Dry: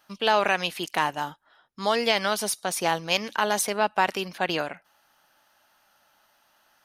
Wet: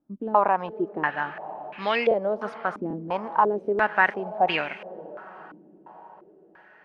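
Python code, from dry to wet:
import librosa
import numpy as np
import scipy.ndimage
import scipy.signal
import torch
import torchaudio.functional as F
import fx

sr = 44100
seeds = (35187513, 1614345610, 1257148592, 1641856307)

y = fx.echo_diffused(x, sr, ms=498, feedback_pct=58, wet_db=-15.5)
y = fx.buffer_glitch(y, sr, at_s=(2.09, 2.88, 3.63), block=1024, repeats=1)
y = fx.filter_held_lowpass(y, sr, hz=2.9, low_hz=290.0, high_hz=2400.0)
y = y * 10.0 ** (-2.5 / 20.0)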